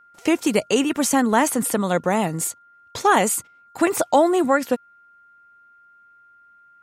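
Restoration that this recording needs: band-stop 1.4 kHz, Q 30

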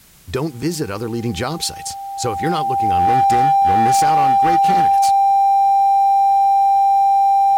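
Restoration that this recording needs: clip repair -10.5 dBFS; band-stop 790 Hz, Q 30; expander -21 dBFS, range -21 dB

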